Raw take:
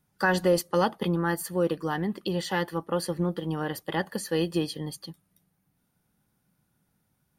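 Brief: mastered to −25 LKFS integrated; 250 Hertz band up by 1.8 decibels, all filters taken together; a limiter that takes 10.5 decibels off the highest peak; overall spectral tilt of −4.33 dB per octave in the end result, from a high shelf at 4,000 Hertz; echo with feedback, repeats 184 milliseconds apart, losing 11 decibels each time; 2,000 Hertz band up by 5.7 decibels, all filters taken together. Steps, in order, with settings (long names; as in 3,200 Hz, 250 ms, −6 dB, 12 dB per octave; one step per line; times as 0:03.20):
parametric band 250 Hz +3 dB
parametric band 2,000 Hz +6 dB
high-shelf EQ 4,000 Hz +7 dB
brickwall limiter −18 dBFS
repeating echo 184 ms, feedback 28%, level −11 dB
level +3.5 dB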